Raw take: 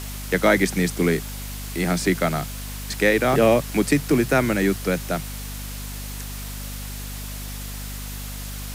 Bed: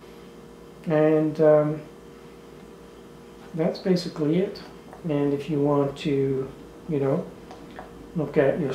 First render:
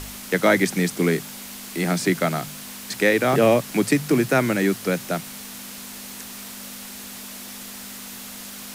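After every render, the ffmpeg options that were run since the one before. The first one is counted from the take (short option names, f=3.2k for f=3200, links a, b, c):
-af "bandreject=f=50:t=h:w=4,bandreject=f=100:t=h:w=4,bandreject=f=150:t=h:w=4"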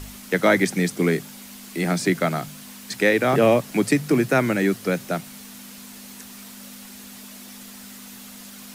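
-af "afftdn=nr=6:nf=-38"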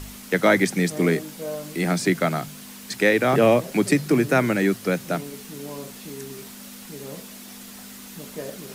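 -filter_complex "[1:a]volume=-14.5dB[a];[0:a][a]amix=inputs=2:normalize=0"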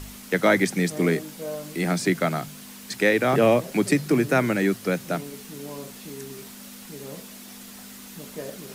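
-af "volume=-1.5dB"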